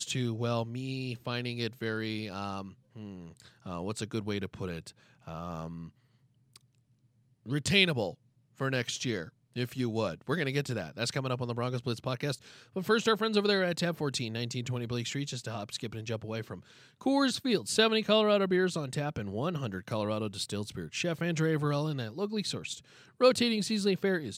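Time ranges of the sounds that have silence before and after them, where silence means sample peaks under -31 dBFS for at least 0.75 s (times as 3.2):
3.67–5.67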